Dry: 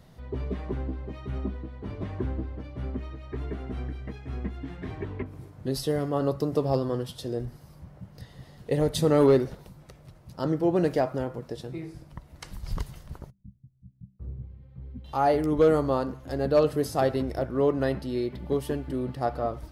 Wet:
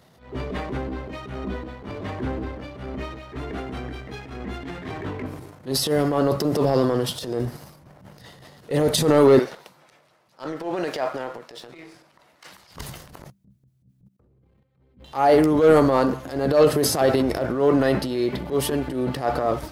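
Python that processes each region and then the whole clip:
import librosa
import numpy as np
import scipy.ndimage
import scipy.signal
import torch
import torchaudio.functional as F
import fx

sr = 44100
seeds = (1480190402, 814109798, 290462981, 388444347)

y = fx.chain(x, sr, fx.highpass(hz=1100.0, slope=6),
    fx.high_shelf(hz=6400.0, db=-11.5), at=(9.39, 12.76))
y = fx.chain(y, sr, fx.low_shelf(hz=130.0, db=-8.0),
    fx.level_steps(step_db=18), at=(14.08, 14.97))
y = fx.highpass(y, sr, hz=280.0, slope=6)
y = fx.transient(y, sr, attack_db=-11, sustain_db=7)
y = fx.leveller(y, sr, passes=1)
y = y * 10.0 ** (5.5 / 20.0)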